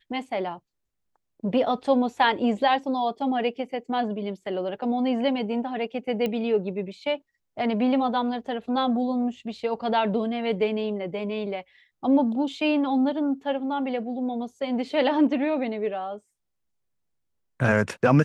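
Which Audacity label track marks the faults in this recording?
6.260000	6.260000	click −16 dBFS

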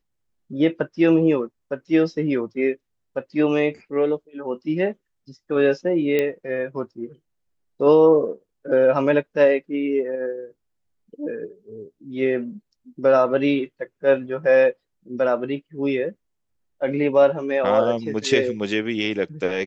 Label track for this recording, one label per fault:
6.190000	6.190000	click −10 dBFS

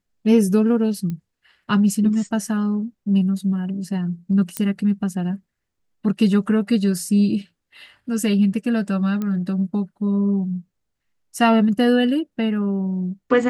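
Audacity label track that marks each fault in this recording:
1.100000	1.100000	click −18 dBFS
4.570000	4.570000	click −8 dBFS
9.220000	9.220000	click −15 dBFS

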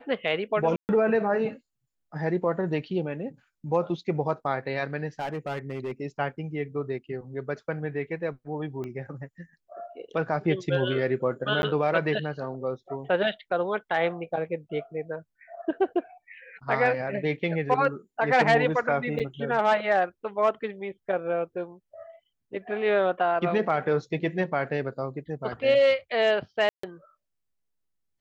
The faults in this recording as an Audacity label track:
0.760000	0.890000	drop-out 129 ms
5.190000	5.910000	clipping −27.5 dBFS
8.840000	8.840000	click −25 dBFS
11.620000	11.630000	drop-out 11 ms
19.190000	19.200000	drop-out 7.9 ms
26.690000	26.830000	drop-out 144 ms

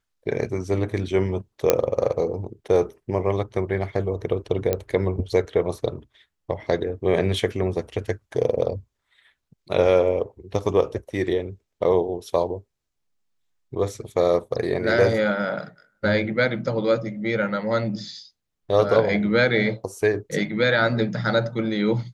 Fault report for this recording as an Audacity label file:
1.700000	1.700000	click −1 dBFS
4.730000	4.730000	click −9 dBFS

